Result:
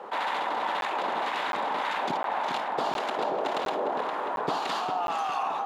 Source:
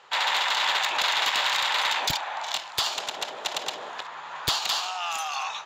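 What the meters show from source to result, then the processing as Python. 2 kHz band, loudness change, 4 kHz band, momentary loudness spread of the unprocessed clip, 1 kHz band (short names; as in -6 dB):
-6.5 dB, -4.0 dB, -13.5 dB, 9 LU, +2.0 dB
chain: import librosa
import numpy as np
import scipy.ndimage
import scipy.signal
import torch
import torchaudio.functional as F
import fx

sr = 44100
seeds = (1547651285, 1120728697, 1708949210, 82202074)

p1 = fx.cvsd(x, sr, bps=64000)
p2 = scipy.signal.sosfilt(scipy.signal.butter(4, 220.0, 'highpass', fs=sr, output='sos'), p1)
p3 = fx.tilt_shelf(p2, sr, db=9.5, hz=1200.0)
p4 = p3 + fx.echo_filtered(p3, sr, ms=405, feedback_pct=58, hz=4300.0, wet_db=-7.0, dry=0)
p5 = fx.harmonic_tremolo(p4, sr, hz=1.8, depth_pct=50, crossover_hz=1100.0)
p6 = fx.rider(p5, sr, range_db=4, speed_s=0.5)
p7 = fx.high_shelf(p6, sr, hz=3000.0, db=-11.0)
p8 = fx.buffer_crackle(p7, sr, first_s=0.81, period_s=0.71, block=512, kind='zero')
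y = fx.env_flatten(p8, sr, amount_pct=50)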